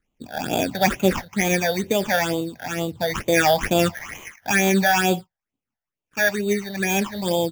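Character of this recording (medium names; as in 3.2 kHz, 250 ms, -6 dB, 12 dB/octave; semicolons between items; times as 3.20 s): aliases and images of a low sample rate 4.1 kHz, jitter 0%; phasing stages 8, 2.2 Hz, lowest notch 320–1700 Hz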